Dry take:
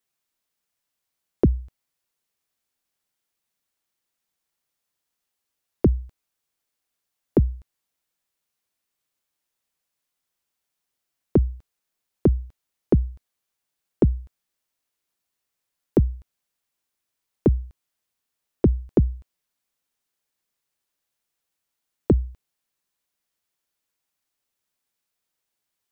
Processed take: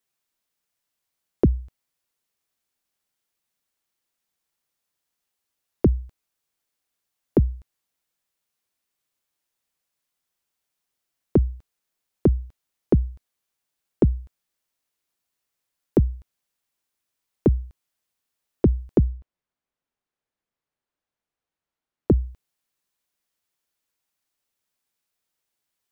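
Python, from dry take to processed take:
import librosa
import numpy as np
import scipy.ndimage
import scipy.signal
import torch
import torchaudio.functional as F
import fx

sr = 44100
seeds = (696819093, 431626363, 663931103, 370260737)

y = fx.lowpass(x, sr, hz=fx.line((19.07, 1200.0), (22.18, 1500.0)), slope=6, at=(19.07, 22.18), fade=0.02)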